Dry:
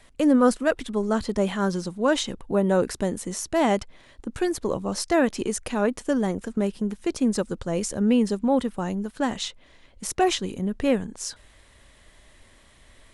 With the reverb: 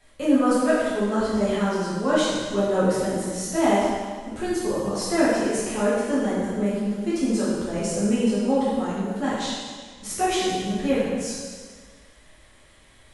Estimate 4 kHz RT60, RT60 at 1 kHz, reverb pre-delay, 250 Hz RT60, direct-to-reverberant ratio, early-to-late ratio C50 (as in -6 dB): 1.5 s, 1.6 s, 4 ms, 1.6 s, -10.5 dB, -2.0 dB